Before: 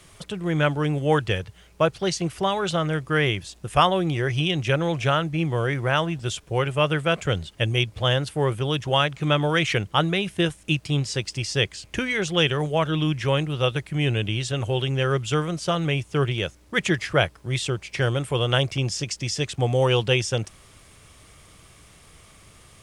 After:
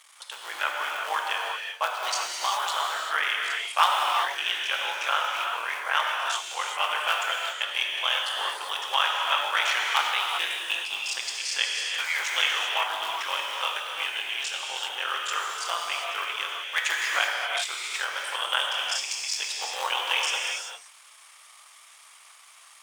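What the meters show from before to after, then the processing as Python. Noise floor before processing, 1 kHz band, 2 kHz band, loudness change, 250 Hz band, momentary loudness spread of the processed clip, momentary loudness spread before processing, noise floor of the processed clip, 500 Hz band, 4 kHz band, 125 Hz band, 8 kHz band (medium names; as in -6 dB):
-52 dBFS, +0.5 dB, +1.5 dB, -2.5 dB, under -30 dB, 6 LU, 6 LU, -52 dBFS, -15.0 dB, +1.5 dB, under -40 dB, +2.0 dB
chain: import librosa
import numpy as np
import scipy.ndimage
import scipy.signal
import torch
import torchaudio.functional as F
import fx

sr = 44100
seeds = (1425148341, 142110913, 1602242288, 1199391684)

y = fx.cycle_switch(x, sr, every=3, mode='muted')
y = scipy.signal.sosfilt(scipy.signal.cheby1(3, 1.0, 920.0, 'highpass', fs=sr, output='sos'), y)
y = fx.rev_gated(y, sr, seeds[0], gate_ms=420, shape='flat', drr_db=-1.5)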